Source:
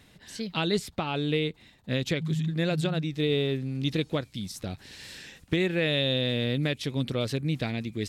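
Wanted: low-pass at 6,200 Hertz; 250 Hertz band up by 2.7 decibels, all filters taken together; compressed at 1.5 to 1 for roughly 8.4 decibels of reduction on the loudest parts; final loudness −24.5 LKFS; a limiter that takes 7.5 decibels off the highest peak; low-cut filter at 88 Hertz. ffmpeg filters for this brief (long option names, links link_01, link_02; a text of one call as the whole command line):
ffmpeg -i in.wav -af "highpass=88,lowpass=6200,equalizer=frequency=250:width_type=o:gain=4,acompressor=threshold=-44dB:ratio=1.5,volume=13dB,alimiter=limit=-14dB:level=0:latency=1" out.wav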